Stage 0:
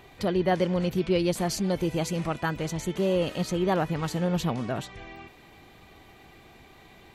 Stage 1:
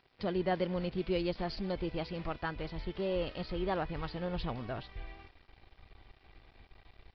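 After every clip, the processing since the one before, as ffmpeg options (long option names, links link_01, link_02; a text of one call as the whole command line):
ffmpeg -i in.wav -af "asubboost=boost=10.5:cutoff=54,aresample=11025,aeval=exprs='sgn(val(0))*max(abs(val(0))-0.00335,0)':channel_layout=same,aresample=44100,volume=-7dB" out.wav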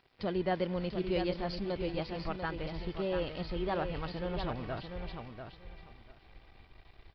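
ffmpeg -i in.wav -af "aecho=1:1:692|1384|2076:0.447|0.0804|0.0145" out.wav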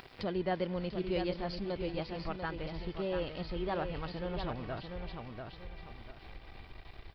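ffmpeg -i in.wav -af "acompressor=mode=upward:threshold=-36dB:ratio=2.5,volume=-1.5dB" out.wav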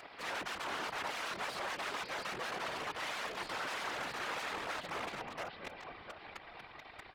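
ffmpeg -i in.wav -af "aeval=exprs='(mod(70.8*val(0)+1,2)-1)/70.8':channel_layout=same,bandpass=frequency=1200:width_type=q:width=0.64:csg=0,afftfilt=real='hypot(re,im)*cos(2*PI*random(0))':imag='hypot(re,im)*sin(2*PI*random(1))':win_size=512:overlap=0.75,volume=12.5dB" out.wav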